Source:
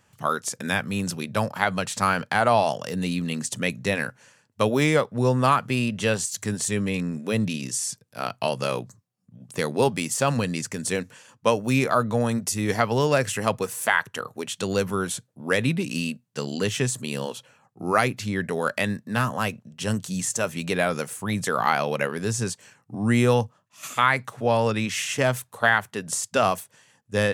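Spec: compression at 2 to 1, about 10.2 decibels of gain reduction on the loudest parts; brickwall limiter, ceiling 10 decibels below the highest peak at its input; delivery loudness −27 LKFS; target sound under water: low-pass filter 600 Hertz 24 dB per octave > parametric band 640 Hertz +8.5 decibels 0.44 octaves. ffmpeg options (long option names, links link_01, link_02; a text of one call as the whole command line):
ffmpeg -i in.wav -af "acompressor=threshold=-34dB:ratio=2,alimiter=limit=-22dB:level=0:latency=1,lowpass=frequency=600:width=0.5412,lowpass=frequency=600:width=1.3066,equalizer=frequency=640:width_type=o:width=0.44:gain=8.5,volume=9dB" out.wav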